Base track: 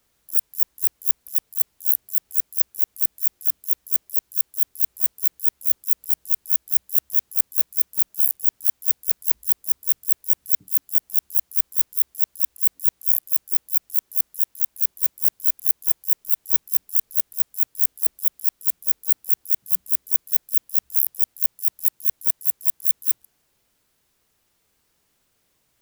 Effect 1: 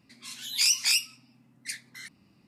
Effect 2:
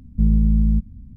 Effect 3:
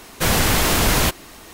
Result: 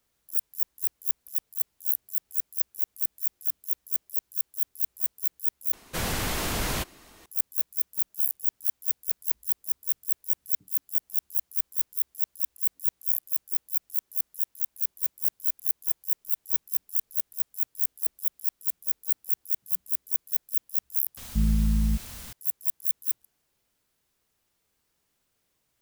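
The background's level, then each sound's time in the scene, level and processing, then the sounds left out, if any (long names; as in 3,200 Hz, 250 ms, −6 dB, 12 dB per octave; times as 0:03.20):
base track −7 dB
0:05.73: overwrite with 3 −11.5 dB
0:21.17: overwrite with 2 −7 dB + bit-depth reduction 6 bits, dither triangular
not used: 1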